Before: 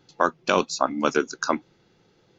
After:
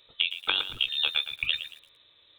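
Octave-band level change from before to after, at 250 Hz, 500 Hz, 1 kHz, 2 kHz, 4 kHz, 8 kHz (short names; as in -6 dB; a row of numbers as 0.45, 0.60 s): under -25 dB, -25.0 dB, -18.0 dB, -2.0 dB, +10.5 dB, n/a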